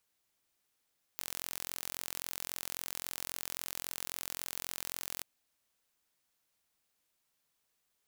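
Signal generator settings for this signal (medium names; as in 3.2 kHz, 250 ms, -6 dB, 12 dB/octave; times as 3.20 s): pulse train 43.7 per s, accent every 0, -11.5 dBFS 4.04 s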